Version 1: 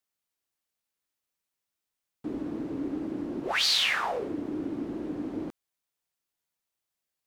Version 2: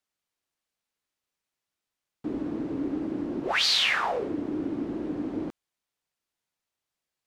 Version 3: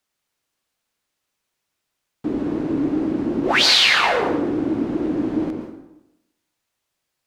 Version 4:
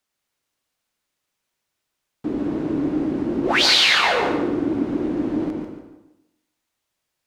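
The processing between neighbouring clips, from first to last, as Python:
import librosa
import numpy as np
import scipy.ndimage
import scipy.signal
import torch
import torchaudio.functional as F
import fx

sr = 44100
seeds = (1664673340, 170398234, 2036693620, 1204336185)

y1 = fx.high_shelf(x, sr, hz=10000.0, db=-11.5)
y1 = F.gain(torch.from_numpy(y1), 2.5).numpy()
y2 = fx.rev_plate(y1, sr, seeds[0], rt60_s=0.9, hf_ratio=0.75, predelay_ms=105, drr_db=5.0)
y2 = F.gain(torch.from_numpy(y2), 8.0).numpy()
y3 = fx.echo_feedback(y2, sr, ms=143, feedback_pct=25, wet_db=-8)
y3 = F.gain(torch.from_numpy(y3), -1.5).numpy()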